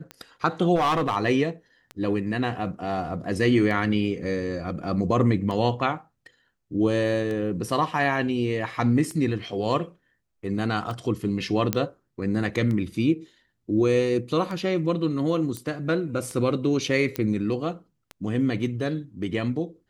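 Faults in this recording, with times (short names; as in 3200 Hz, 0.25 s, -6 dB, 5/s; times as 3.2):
tick -21 dBFS
0.75–1.17 clipped -18.5 dBFS
11.73 pop -7 dBFS
15.57 pop -18 dBFS
17.16 pop -13 dBFS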